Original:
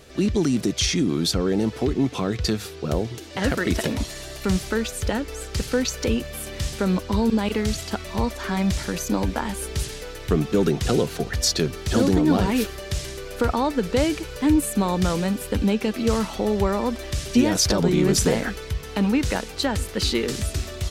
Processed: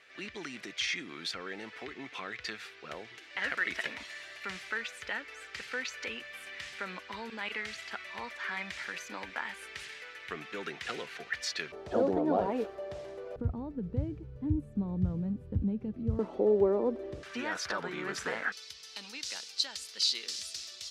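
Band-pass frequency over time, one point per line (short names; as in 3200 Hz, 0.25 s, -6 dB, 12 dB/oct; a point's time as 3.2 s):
band-pass, Q 2.3
2000 Hz
from 11.72 s 630 Hz
from 13.36 s 110 Hz
from 16.19 s 410 Hz
from 17.23 s 1500 Hz
from 18.52 s 4900 Hz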